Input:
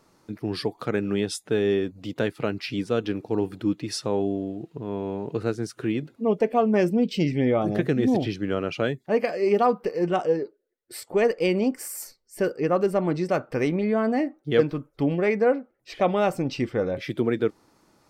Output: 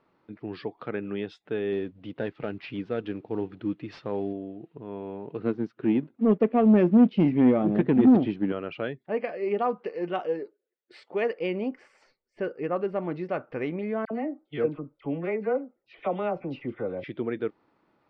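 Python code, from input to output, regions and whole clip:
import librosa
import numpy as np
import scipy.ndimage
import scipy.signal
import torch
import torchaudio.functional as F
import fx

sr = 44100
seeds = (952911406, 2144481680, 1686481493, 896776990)

y = fx.chain(x, sr, fx.cvsd(bps=64000),
    fx.low_shelf(hz=220.0, db=4.5), at=(1.72, 4.33))
y = fx.chain(y, sr, fx.peak_eq(hz=230.0, db=12.0, octaves=1.5),
    fx.leveller(passes=1),
    fx.upward_expand(threshold_db=-21.0, expansion=1.5), at=(5.39, 8.52))
y = fx.chain(y, sr, fx.highpass(hz=170.0, slope=12),
    fx.high_shelf(hz=3500.0, db=9.5), at=(9.78, 11.39))
y = fx.chain(y, sr, fx.high_shelf(hz=2400.0, db=-7.0),
    fx.notch(hz=1700.0, q=9.9),
    fx.dispersion(late='lows', ms=59.0, hz=1400.0), at=(14.05, 17.04))
y = scipy.signal.sosfilt(scipy.signal.butter(4, 3200.0, 'lowpass', fs=sr, output='sos'), y)
y = fx.low_shelf(y, sr, hz=110.0, db=-9.5)
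y = y * librosa.db_to_amplitude(-5.5)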